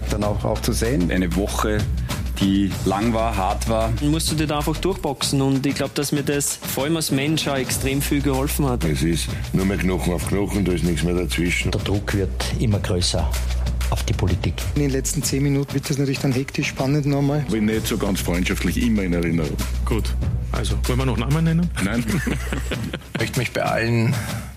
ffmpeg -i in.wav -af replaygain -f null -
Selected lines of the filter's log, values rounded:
track_gain = +3.9 dB
track_peak = 0.342